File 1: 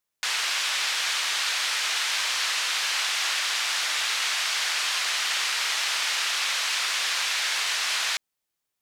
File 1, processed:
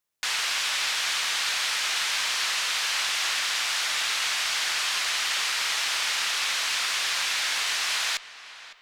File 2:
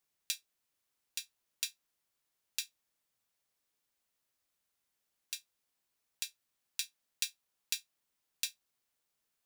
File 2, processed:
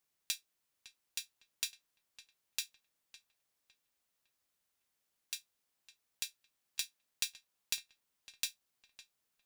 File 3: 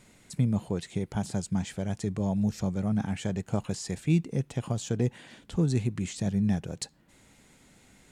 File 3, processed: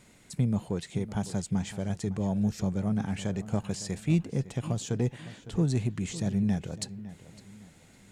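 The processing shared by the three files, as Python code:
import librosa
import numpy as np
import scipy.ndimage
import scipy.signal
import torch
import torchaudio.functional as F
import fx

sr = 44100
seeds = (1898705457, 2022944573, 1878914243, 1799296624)

y = fx.diode_clip(x, sr, knee_db=-11.5)
y = fx.echo_filtered(y, sr, ms=557, feedback_pct=35, hz=3400.0, wet_db=-15)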